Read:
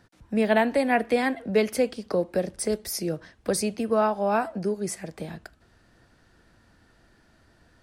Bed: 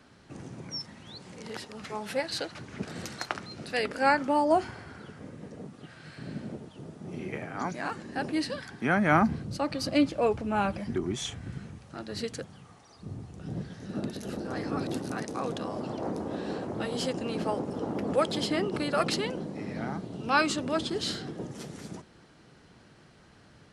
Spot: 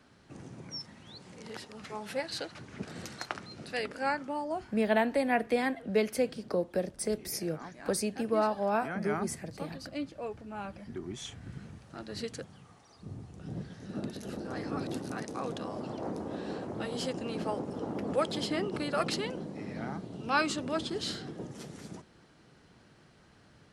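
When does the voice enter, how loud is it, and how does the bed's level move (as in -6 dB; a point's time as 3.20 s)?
4.40 s, -5.5 dB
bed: 3.69 s -4 dB
4.69 s -13 dB
10.57 s -13 dB
11.71 s -3.5 dB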